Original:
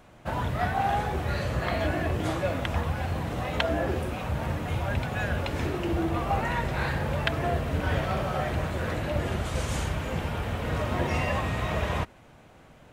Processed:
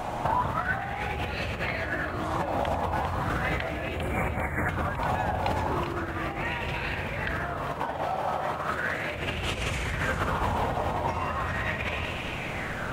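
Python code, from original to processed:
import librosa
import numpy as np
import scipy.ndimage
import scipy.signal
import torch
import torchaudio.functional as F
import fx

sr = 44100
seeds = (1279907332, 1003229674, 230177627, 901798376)

y = fx.brickwall_bandstop(x, sr, low_hz=2400.0, high_hz=6700.0, at=(3.76, 4.69))
y = fx.over_compress(y, sr, threshold_db=-39.0, ratio=-1.0)
y = fx.highpass(y, sr, hz=280.0, slope=6, at=(7.54, 9.15))
y = fx.echo_alternate(y, sr, ms=199, hz=1200.0, feedback_pct=67, wet_db=-4.0)
y = fx.bell_lfo(y, sr, hz=0.37, low_hz=810.0, high_hz=2700.0, db=13)
y = y * librosa.db_to_amplitude(5.5)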